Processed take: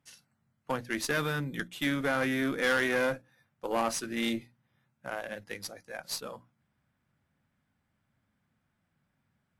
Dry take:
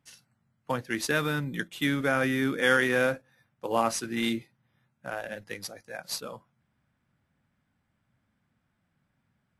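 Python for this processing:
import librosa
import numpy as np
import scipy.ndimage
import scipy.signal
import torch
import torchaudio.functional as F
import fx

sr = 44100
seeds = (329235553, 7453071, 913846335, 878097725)

y = fx.tube_stage(x, sr, drive_db=20.0, bias=0.45)
y = fx.hum_notches(y, sr, base_hz=60, count=5)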